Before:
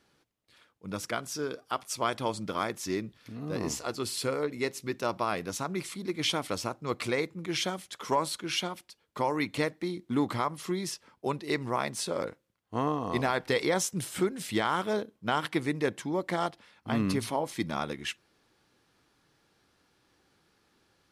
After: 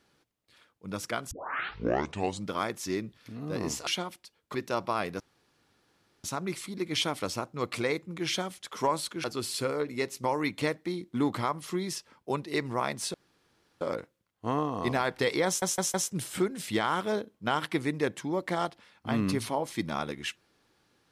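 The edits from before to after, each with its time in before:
1.31 tape start 1.16 s
3.87–4.87 swap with 8.52–9.2
5.52 insert room tone 1.04 s
12.1 insert room tone 0.67 s
13.75 stutter 0.16 s, 4 plays

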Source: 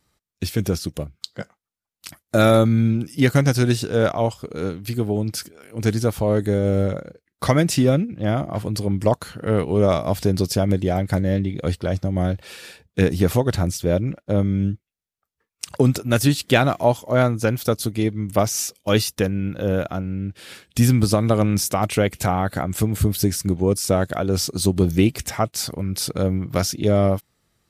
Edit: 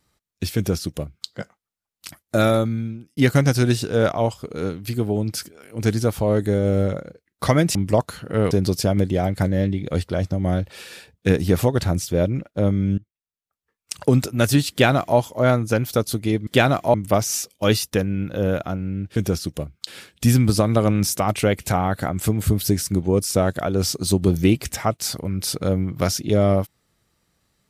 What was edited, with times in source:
0.56–1.27 copy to 20.41
2.2–3.17 fade out
7.75–8.88 cut
9.64–10.23 cut
14.7–15.66 fade in, from -22.5 dB
16.43–16.9 copy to 18.19

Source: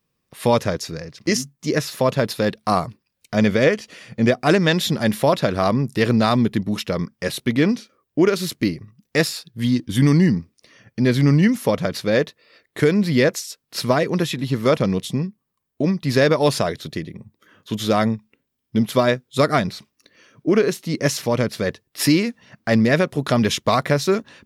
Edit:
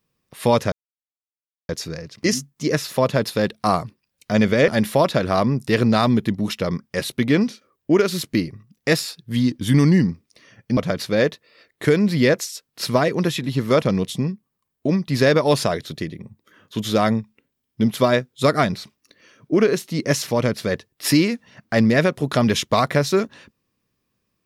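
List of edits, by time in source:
0.72 insert silence 0.97 s
3.71–4.96 cut
11.05–11.72 cut

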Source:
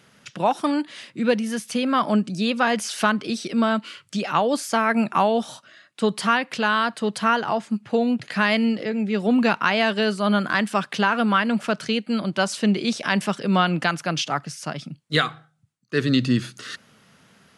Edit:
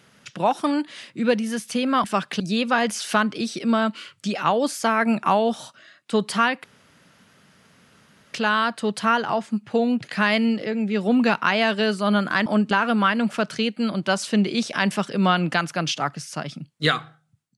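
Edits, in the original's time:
2.04–2.29 swap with 10.65–11.01
6.53 insert room tone 1.70 s

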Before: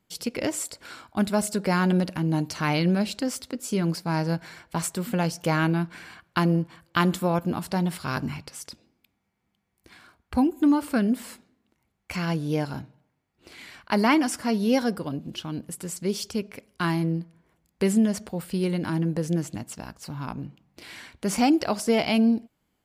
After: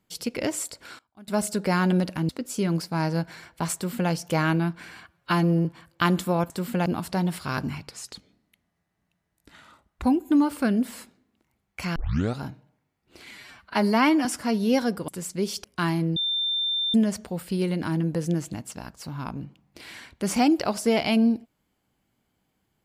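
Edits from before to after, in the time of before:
0.65–1.62 dip -24 dB, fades 0.34 s logarithmic
2.29–3.43 cut
4.89–5.25 copy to 7.45
6.22–6.6 stretch 1.5×
8.5–10.35 speed 87%
12.27 tape start 0.43 s
13.62–14.25 stretch 1.5×
15.08–15.75 cut
16.31–16.66 cut
17.18–17.96 bleep 3580 Hz -23 dBFS

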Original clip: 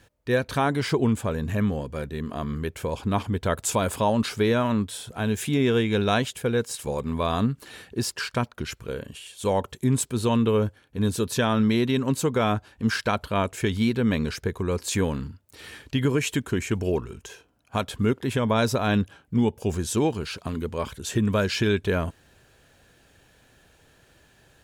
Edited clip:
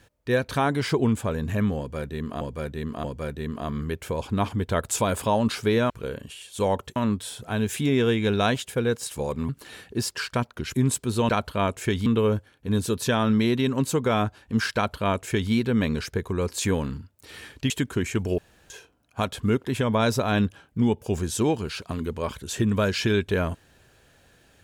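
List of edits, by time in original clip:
1.78–2.41 loop, 3 plays
7.17–7.5 cut
8.75–9.81 move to 4.64
13.05–13.82 copy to 10.36
16–16.26 cut
16.94–17.26 room tone

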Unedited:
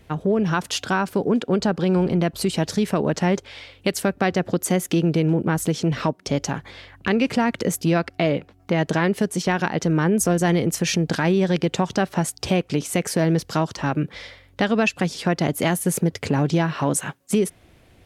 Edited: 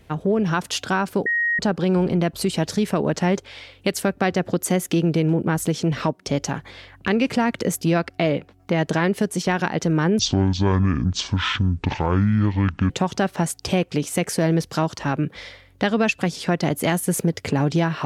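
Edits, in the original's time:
1.26–1.59 bleep 1880 Hz -18 dBFS
10.19–11.68 speed 55%

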